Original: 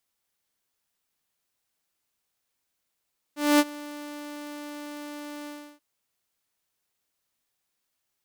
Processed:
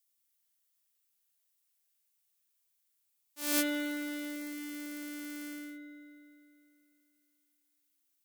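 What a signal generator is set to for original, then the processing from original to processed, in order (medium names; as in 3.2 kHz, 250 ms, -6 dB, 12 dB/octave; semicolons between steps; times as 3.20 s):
ADSR saw 294 Hz, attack 233 ms, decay 43 ms, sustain -21.5 dB, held 2.11 s, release 325 ms -12.5 dBFS
pre-emphasis filter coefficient 0.9; spring tank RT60 2.7 s, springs 34 ms, chirp 60 ms, DRR -1.5 dB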